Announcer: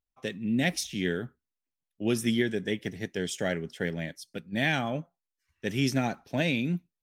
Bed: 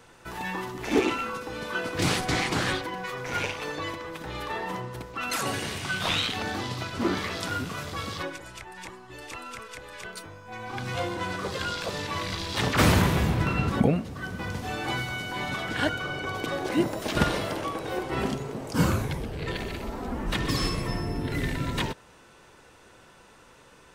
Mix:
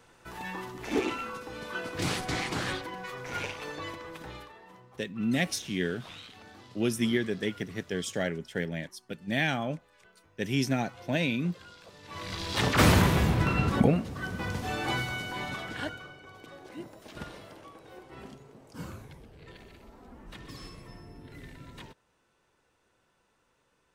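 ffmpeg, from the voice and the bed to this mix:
ffmpeg -i stem1.wav -i stem2.wav -filter_complex "[0:a]adelay=4750,volume=-1dB[link_01];[1:a]volume=14dB,afade=type=out:start_time=4.26:duration=0.26:silence=0.188365,afade=type=in:start_time=12.02:duration=0.55:silence=0.105925,afade=type=out:start_time=14.96:duration=1.21:silence=0.133352[link_02];[link_01][link_02]amix=inputs=2:normalize=0" out.wav

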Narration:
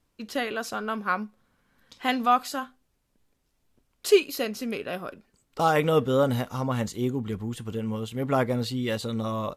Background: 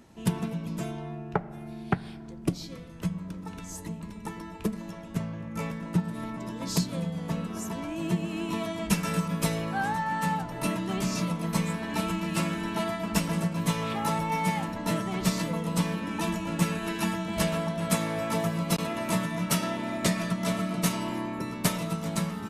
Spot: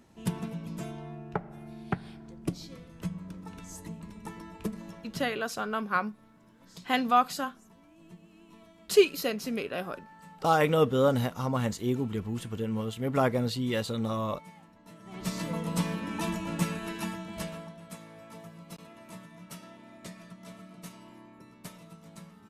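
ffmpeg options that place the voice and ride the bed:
ffmpeg -i stem1.wav -i stem2.wav -filter_complex "[0:a]adelay=4850,volume=-1.5dB[link_01];[1:a]volume=16.5dB,afade=type=out:start_time=4.87:duration=0.61:silence=0.112202,afade=type=in:start_time=14.99:duration=0.56:silence=0.0891251,afade=type=out:start_time=16.47:duration=1.38:silence=0.149624[link_02];[link_01][link_02]amix=inputs=2:normalize=0" out.wav

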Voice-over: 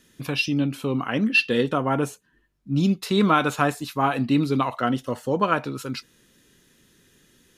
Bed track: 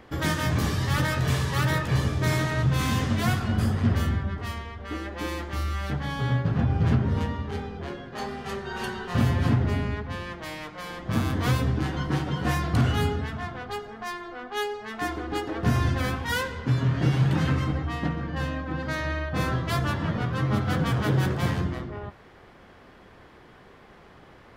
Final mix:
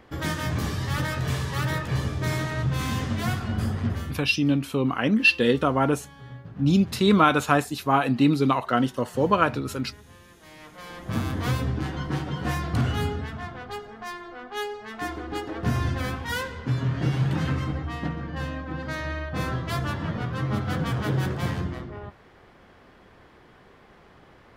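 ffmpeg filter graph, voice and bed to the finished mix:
ffmpeg -i stem1.wav -i stem2.wav -filter_complex "[0:a]adelay=3900,volume=1dB[link_01];[1:a]volume=12.5dB,afade=type=out:start_time=3.78:duration=0.48:silence=0.188365,afade=type=in:start_time=10.4:duration=0.64:silence=0.177828[link_02];[link_01][link_02]amix=inputs=2:normalize=0" out.wav

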